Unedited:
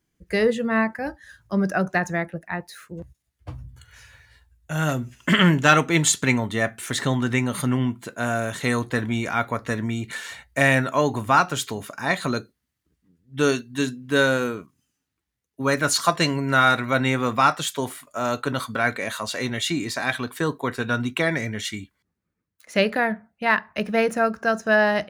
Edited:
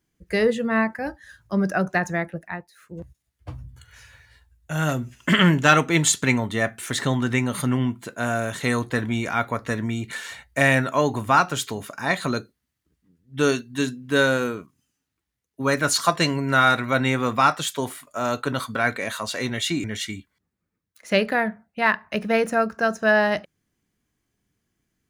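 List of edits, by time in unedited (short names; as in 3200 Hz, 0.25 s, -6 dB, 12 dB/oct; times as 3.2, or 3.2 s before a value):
2.45–2.99 dip -14.5 dB, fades 0.25 s
19.84–21.48 cut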